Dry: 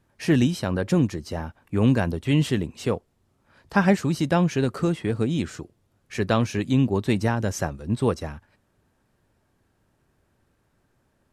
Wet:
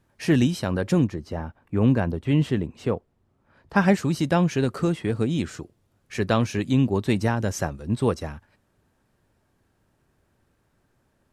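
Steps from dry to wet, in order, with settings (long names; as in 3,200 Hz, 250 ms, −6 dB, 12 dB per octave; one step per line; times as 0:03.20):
0:01.04–0:03.76: high-shelf EQ 3,100 Hz −12 dB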